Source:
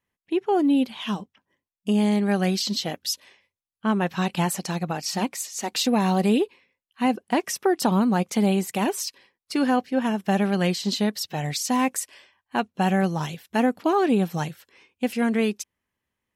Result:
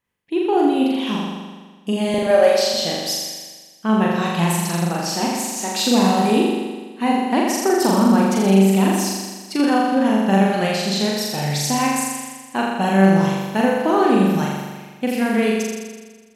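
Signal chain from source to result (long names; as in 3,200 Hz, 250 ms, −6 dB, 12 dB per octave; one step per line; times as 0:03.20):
0:02.14–0:02.74: high-pass with resonance 550 Hz, resonance Q 4.9
flutter between parallel walls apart 7.1 metres, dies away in 1.4 s
level +1 dB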